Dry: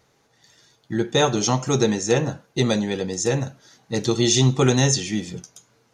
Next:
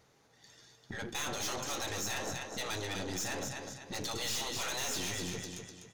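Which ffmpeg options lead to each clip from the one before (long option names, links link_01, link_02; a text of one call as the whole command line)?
ffmpeg -i in.wav -af "afftfilt=real='re*lt(hypot(re,im),0.224)':imag='im*lt(hypot(re,im),0.224)':win_size=1024:overlap=0.75,aecho=1:1:250|500|750|1000:0.398|0.151|0.0575|0.0218,aeval=exprs='(tanh(39.8*val(0)+0.55)-tanh(0.55))/39.8':channel_layout=same,volume=-1.5dB" out.wav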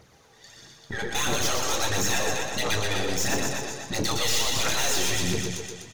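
ffmpeg -i in.wav -filter_complex "[0:a]aphaser=in_gain=1:out_gain=1:delay=2.7:decay=0.48:speed=1.5:type=triangular,asplit=2[link_01][link_02];[link_02]adelay=27,volume=-12dB[link_03];[link_01][link_03]amix=inputs=2:normalize=0,aecho=1:1:121:0.562,volume=8dB" out.wav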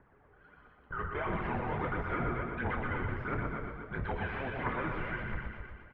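ffmpeg -i in.wav -filter_complex "[0:a]asplit=2[link_01][link_02];[link_02]acrusher=bits=3:mode=log:mix=0:aa=0.000001,volume=-5dB[link_03];[link_01][link_03]amix=inputs=2:normalize=0,aeval=exprs='(mod(3.55*val(0)+1,2)-1)/3.55':channel_layout=same,highpass=frequency=270:width_type=q:width=0.5412,highpass=frequency=270:width_type=q:width=1.307,lowpass=frequency=2300:width_type=q:width=0.5176,lowpass=frequency=2300:width_type=q:width=0.7071,lowpass=frequency=2300:width_type=q:width=1.932,afreqshift=-390,volume=-7.5dB" out.wav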